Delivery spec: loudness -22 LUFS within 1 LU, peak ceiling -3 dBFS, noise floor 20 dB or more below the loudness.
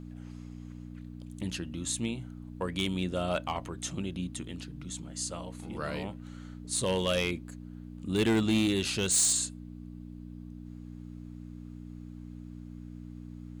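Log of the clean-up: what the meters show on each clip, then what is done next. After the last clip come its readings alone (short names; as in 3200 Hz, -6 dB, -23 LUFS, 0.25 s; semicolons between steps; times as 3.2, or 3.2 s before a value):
clipped 0.3%; flat tops at -21.0 dBFS; hum 60 Hz; harmonics up to 300 Hz; hum level -42 dBFS; loudness -31.0 LUFS; peak -21.0 dBFS; loudness target -22.0 LUFS
-> clip repair -21 dBFS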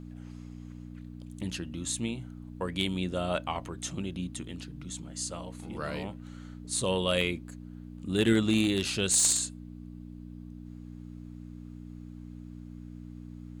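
clipped 0.0%; hum 60 Hz; harmonics up to 300 Hz; hum level -42 dBFS
-> de-hum 60 Hz, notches 5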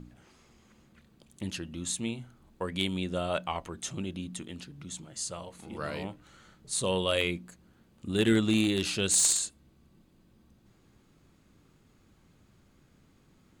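hum none; loudness -30.0 LUFS; peak -12.0 dBFS; loudness target -22.0 LUFS
-> gain +8 dB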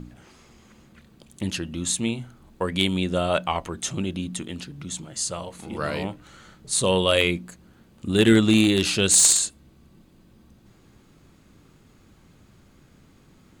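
loudness -22.0 LUFS; peak -4.0 dBFS; noise floor -56 dBFS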